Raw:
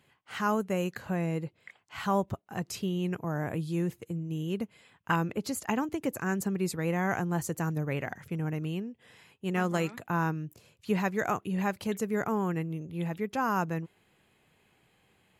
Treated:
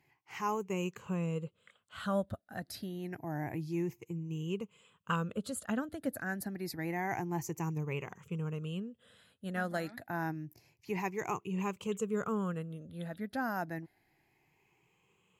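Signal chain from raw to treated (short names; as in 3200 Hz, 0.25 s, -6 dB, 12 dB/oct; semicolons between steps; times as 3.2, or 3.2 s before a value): moving spectral ripple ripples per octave 0.74, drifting +0.28 Hz, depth 13 dB; gain -7.5 dB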